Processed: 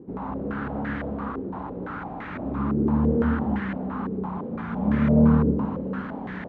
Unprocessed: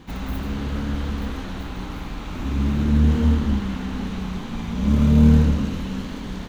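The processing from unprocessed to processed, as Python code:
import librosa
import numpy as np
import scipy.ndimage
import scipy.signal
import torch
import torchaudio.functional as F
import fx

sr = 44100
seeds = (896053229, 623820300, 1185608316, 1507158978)

y = scipy.signal.sosfilt(scipy.signal.butter(2, 120.0, 'highpass', fs=sr, output='sos'), x)
y = fx.filter_held_lowpass(y, sr, hz=5.9, low_hz=410.0, high_hz=1800.0)
y = y * 10.0 ** (-2.0 / 20.0)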